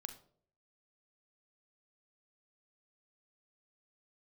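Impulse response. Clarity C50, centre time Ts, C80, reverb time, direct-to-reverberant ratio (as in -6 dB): 12.0 dB, 8 ms, 16.5 dB, 0.55 s, 8.5 dB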